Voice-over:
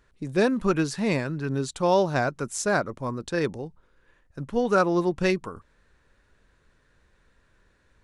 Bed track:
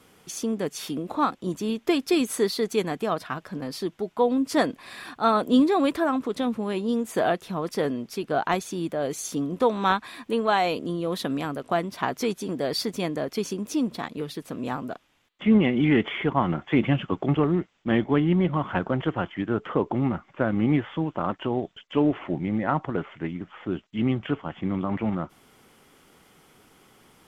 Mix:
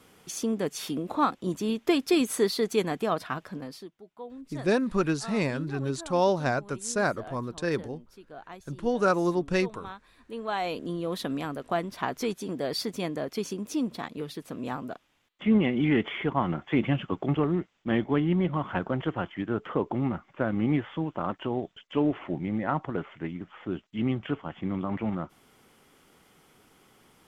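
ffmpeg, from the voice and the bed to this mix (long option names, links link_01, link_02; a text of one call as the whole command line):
ffmpeg -i stem1.wav -i stem2.wav -filter_complex "[0:a]adelay=4300,volume=-2.5dB[link_01];[1:a]volume=15.5dB,afade=type=out:start_time=3.38:duration=0.53:silence=0.112202,afade=type=in:start_time=10.17:duration=0.75:silence=0.149624[link_02];[link_01][link_02]amix=inputs=2:normalize=0" out.wav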